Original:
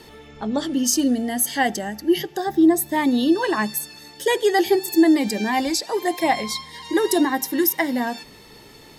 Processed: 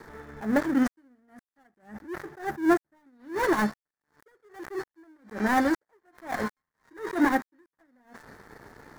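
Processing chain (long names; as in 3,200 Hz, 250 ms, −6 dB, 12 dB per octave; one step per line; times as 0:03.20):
gap after every zero crossing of 0.28 ms
high shelf with overshoot 2,200 Hz −7.5 dB, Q 3
level that may rise only so fast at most 170 dB per second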